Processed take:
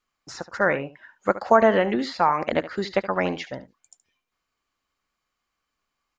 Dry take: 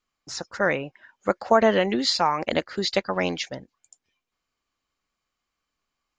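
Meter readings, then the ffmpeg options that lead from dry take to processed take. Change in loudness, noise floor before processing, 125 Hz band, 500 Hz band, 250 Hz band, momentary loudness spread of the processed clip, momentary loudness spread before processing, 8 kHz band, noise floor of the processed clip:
+1.0 dB, -83 dBFS, +0.5 dB, +1.5 dB, +0.5 dB, 20 LU, 16 LU, no reading, -81 dBFS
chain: -filter_complex "[0:a]acrossover=split=1800[s0][s1];[s0]crystalizer=i=6.5:c=0[s2];[s1]acompressor=threshold=0.01:ratio=6[s3];[s2][s3]amix=inputs=2:normalize=0,aecho=1:1:72:0.178"

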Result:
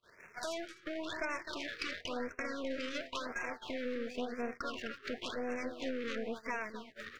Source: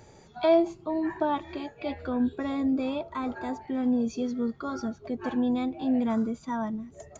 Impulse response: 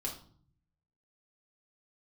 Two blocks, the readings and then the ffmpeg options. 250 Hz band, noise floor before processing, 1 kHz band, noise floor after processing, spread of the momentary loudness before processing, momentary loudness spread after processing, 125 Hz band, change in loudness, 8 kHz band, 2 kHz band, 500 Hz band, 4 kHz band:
-16.0 dB, -54 dBFS, -10.0 dB, -61 dBFS, 10 LU, 4 LU, -15.0 dB, -11.0 dB, no reading, +3.0 dB, -10.0 dB, +1.5 dB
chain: -af "aeval=exprs='val(0)+0.5*0.0119*sgn(val(0))':c=same,firequalizer=gain_entry='entry(880,0);entry(1600,15);entry(6500,-17)':delay=0.05:min_phase=1,aeval=exprs='0.335*(cos(1*acos(clip(val(0)/0.335,-1,1)))-cos(1*PI/2))+0.0841*(cos(8*acos(clip(val(0)/0.335,-1,1)))-cos(8*PI/2))':c=same,asuperstop=centerf=820:order=20:qfactor=6.9,bass=f=250:g=-12,treble=f=4000:g=5,acompressor=threshold=0.0224:ratio=4,aecho=1:1:257:0.355,agate=range=0.0141:threshold=0.0141:ratio=16:detection=peak,dynaudnorm=f=240:g=7:m=1.41,afftfilt=real='re*(1-between(b*sr/1024,760*pow(3900/760,0.5+0.5*sin(2*PI*0.95*pts/sr))/1.41,760*pow(3900/760,0.5+0.5*sin(2*PI*0.95*pts/sr))*1.41))':imag='im*(1-between(b*sr/1024,760*pow(3900/760,0.5+0.5*sin(2*PI*0.95*pts/sr))/1.41,760*pow(3900/760,0.5+0.5*sin(2*PI*0.95*pts/sr))*1.41))':win_size=1024:overlap=0.75,volume=0.473"

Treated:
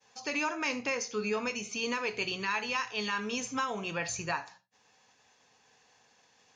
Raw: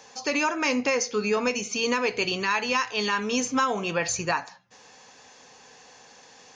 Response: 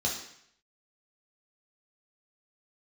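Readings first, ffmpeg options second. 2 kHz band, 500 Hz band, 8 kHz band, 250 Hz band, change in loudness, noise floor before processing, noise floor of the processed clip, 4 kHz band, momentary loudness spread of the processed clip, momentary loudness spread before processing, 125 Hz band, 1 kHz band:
-6.0 dB, -9.0 dB, -8.5 dB, -8.5 dB, -7.5 dB, -52 dBFS, -67 dBFS, -7.0 dB, 3 LU, 3 LU, -6.5 dB, -7.5 dB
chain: -filter_complex "[0:a]agate=range=0.0224:threshold=0.00562:ratio=3:detection=peak,asplit=2[s0][s1];[1:a]atrim=start_sample=2205,atrim=end_sample=4410[s2];[s1][s2]afir=irnorm=-1:irlink=0,volume=0.133[s3];[s0][s3]amix=inputs=2:normalize=0,volume=0.447"

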